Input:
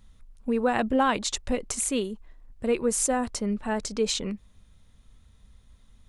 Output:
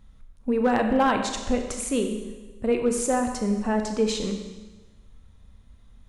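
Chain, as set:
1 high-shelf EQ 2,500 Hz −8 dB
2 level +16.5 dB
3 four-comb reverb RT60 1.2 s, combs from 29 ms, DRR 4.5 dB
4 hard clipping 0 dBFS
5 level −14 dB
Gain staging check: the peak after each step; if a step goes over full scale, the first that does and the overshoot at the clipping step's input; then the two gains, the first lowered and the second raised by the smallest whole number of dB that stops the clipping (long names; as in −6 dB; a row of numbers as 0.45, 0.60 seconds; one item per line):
−13.0, +3.5, +5.0, 0.0, −14.0 dBFS
step 2, 5.0 dB
step 2 +11.5 dB, step 5 −9 dB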